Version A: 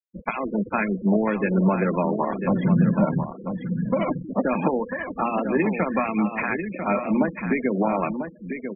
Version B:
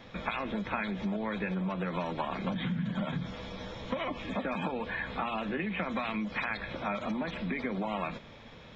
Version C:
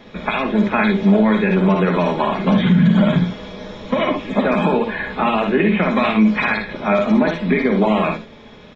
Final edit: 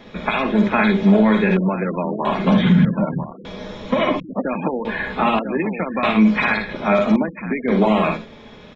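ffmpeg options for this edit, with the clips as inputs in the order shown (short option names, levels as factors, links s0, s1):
-filter_complex "[0:a]asplit=5[s0][s1][s2][s3][s4];[2:a]asplit=6[s5][s6][s7][s8][s9][s10];[s5]atrim=end=1.572[s11];[s0]atrim=start=1.568:end=2.252[s12];[s6]atrim=start=2.248:end=2.852[s13];[s1]atrim=start=2.848:end=3.452[s14];[s7]atrim=start=3.448:end=4.202[s15];[s2]atrim=start=4.198:end=4.852[s16];[s8]atrim=start=4.848:end=5.392[s17];[s3]atrim=start=5.388:end=6.032[s18];[s9]atrim=start=6.028:end=7.162[s19];[s4]atrim=start=7.158:end=7.682[s20];[s10]atrim=start=7.678[s21];[s11][s12]acrossfade=d=0.004:c1=hsin:c2=hsin[s22];[s22][s13]acrossfade=d=0.004:c1=hsin:c2=hsin[s23];[s23][s14]acrossfade=d=0.004:c1=hsin:c2=hsin[s24];[s24][s15]acrossfade=d=0.004:c1=hsin:c2=hsin[s25];[s25][s16]acrossfade=d=0.004:c1=hsin:c2=hsin[s26];[s26][s17]acrossfade=d=0.004:c1=hsin:c2=hsin[s27];[s27][s18]acrossfade=d=0.004:c1=hsin:c2=hsin[s28];[s28][s19]acrossfade=d=0.004:c1=hsin:c2=hsin[s29];[s29][s20]acrossfade=d=0.004:c1=hsin:c2=hsin[s30];[s30][s21]acrossfade=d=0.004:c1=hsin:c2=hsin"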